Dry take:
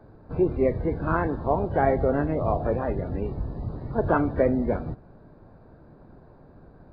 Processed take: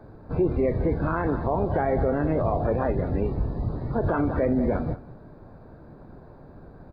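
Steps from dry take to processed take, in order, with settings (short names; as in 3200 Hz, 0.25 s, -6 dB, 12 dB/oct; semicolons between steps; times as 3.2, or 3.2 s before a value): notch 2900 Hz, Q 15; echo 0.194 s -17.5 dB; limiter -19 dBFS, peak gain reduction 10.5 dB; gain +4 dB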